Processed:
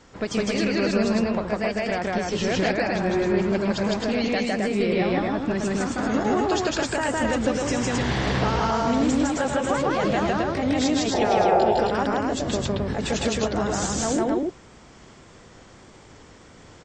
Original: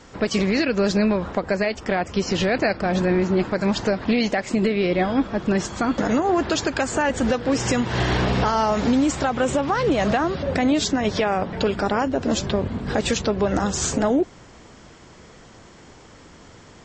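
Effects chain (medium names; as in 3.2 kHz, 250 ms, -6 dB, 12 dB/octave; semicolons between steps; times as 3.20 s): pitch shift switched off and on +1 st, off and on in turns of 295 ms; painted sound noise, 11.13–11.65 s, 350–900 Hz -18 dBFS; loudspeakers at several distances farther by 54 m 0 dB, 91 m -2 dB; trim -5.5 dB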